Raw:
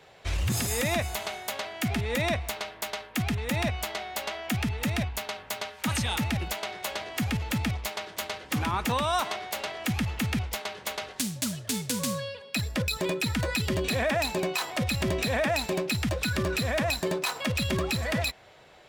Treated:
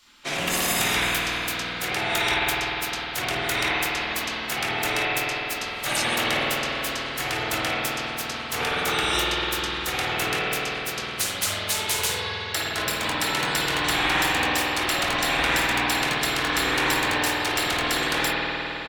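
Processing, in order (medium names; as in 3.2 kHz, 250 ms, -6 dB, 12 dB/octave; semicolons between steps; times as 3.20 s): doubling 22 ms -10 dB; spectral gate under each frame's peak -15 dB weak; spring tank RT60 3.9 s, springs 50 ms, chirp 40 ms, DRR -6 dB; trim +7.5 dB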